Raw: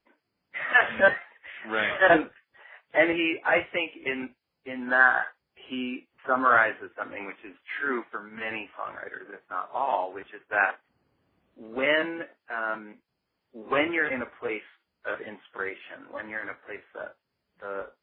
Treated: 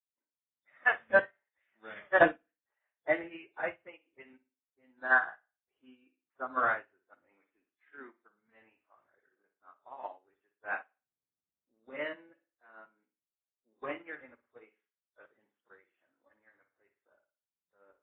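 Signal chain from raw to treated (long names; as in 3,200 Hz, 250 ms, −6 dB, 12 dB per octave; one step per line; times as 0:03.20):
convolution reverb, pre-delay 77 ms
expander for the loud parts 2.5 to 1, over −40 dBFS
level +2.5 dB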